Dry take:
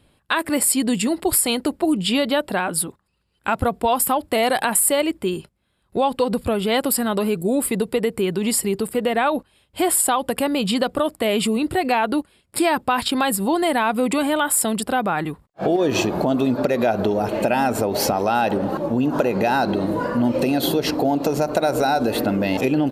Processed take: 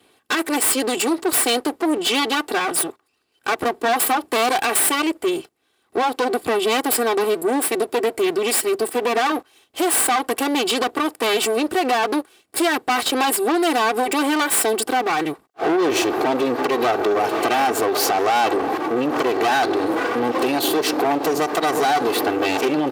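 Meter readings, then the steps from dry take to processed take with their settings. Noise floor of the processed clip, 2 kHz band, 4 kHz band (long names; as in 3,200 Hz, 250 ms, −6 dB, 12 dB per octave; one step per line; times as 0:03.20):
−65 dBFS, +3.0 dB, +3.0 dB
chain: lower of the sound and its delayed copy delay 2.6 ms
soft clipping −20 dBFS, distortion −12 dB
high-pass filter 260 Hz 12 dB per octave
level +6.5 dB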